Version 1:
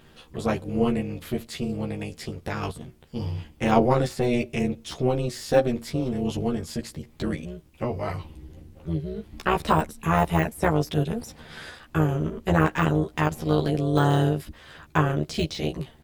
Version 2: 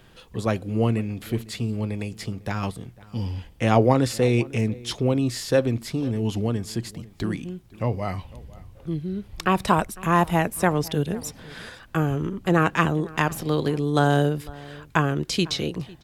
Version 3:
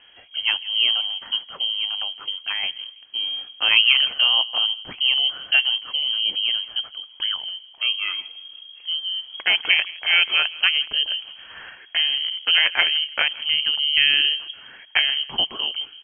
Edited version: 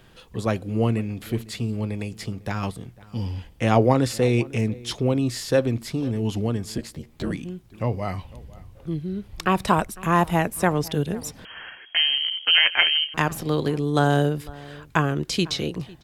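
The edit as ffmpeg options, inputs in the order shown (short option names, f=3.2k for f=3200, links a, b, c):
-filter_complex "[1:a]asplit=3[a][b][c];[a]atrim=end=6.782[d];[0:a]atrim=start=6.778:end=7.312[e];[b]atrim=start=7.308:end=11.452[f];[2:a]atrim=start=11.448:end=13.142[g];[c]atrim=start=13.138[h];[d][e]acrossfade=d=0.004:c1=hsin:c2=hsin[i];[i][f]acrossfade=d=0.004:c1=hsin:c2=hsin[j];[j][g]acrossfade=d=0.004:c1=hsin:c2=hsin[k];[k][h]acrossfade=d=0.004:c1=hsin:c2=hsin"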